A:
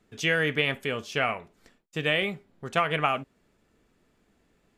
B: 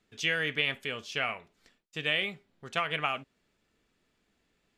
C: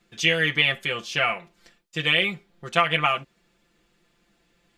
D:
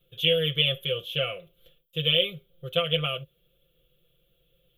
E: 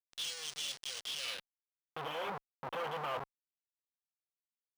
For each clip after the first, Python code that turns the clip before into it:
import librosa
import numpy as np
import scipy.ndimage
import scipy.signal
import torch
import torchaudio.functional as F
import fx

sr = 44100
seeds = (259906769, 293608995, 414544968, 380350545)

y1 = fx.peak_eq(x, sr, hz=3700.0, db=8.5, octaves=2.4)
y1 = F.gain(torch.from_numpy(y1), -9.0).numpy()
y2 = y1 + 0.98 * np.pad(y1, (int(5.8 * sr / 1000.0), 0))[:len(y1)]
y2 = F.gain(torch.from_numpy(y2), 5.5).numpy()
y3 = fx.curve_eq(y2, sr, hz=(150.0, 240.0, 530.0, 870.0, 1300.0, 1900.0, 3300.0, 4800.0, 8300.0, 12000.0), db=(0, -25, 3, -30, -14, -24, 2, -28, -22, 7))
y3 = F.gain(torch.from_numpy(y3), 3.0).numpy()
y4 = fx.schmitt(y3, sr, flips_db=-37.5)
y4 = fx.filter_sweep_bandpass(y4, sr, from_hz=5600.0, to_hz=980.0, start_s=1.14, end_s=2.03, q=1.9)
y4 = np.interp(np.arange(len(y4)), np.arange(len(y4))[::3], y4[::3])
y4 = F.gain(torch.from_numpy(y4), 1.5).numpy()